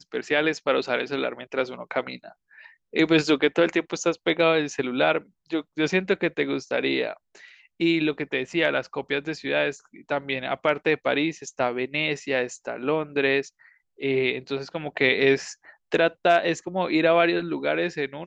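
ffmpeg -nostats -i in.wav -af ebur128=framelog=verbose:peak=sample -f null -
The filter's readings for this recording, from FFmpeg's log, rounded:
Integrated loudness:
  I:         -24.4 LUFS
  Threshold: -34.8 LUFS
Loudness range:
  LRA:         3.5 LU
  Threshold: -45.0 LUFS
  LRA low:   -26.4 LUFS
  LRA high:  -22.9 LUFS
Sample peak:
  Peak:       -6.6 dBFS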